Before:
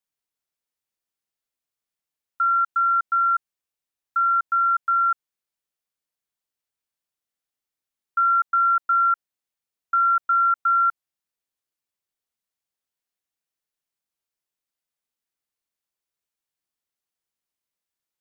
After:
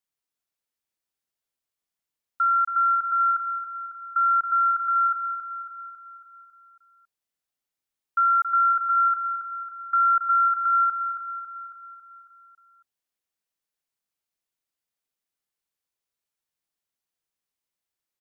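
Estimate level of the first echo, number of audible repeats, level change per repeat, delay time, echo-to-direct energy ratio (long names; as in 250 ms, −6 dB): −8.5 dB, 6, −5.0 dB, 275 ms, −7.0 dB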